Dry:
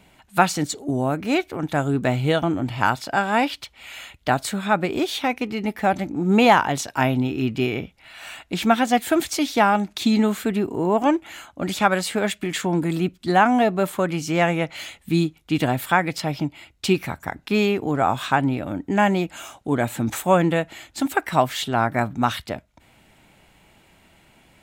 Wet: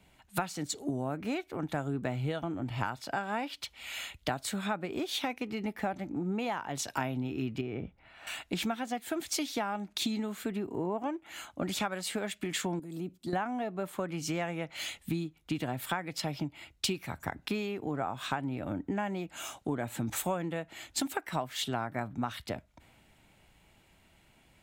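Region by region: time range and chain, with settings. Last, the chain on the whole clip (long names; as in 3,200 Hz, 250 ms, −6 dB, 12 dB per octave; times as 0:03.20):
0:07.61–0:08.27: low-pass filter 1,100 Hz 6 dB per octave + downward compressor 1.5 to 1, threshold −29 dBFS
0:12.79–0:13.33: parametric band 1,800 Hz −13 dB 2.5 octaves + downward compressor 4 to 1, threshold −27 dBFS + high-pass filter 230 Hz 6 dB per octave
whole clip: downward compressor 16 to 1, threshold −30 dBFS; multiband upward and downward expander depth 40%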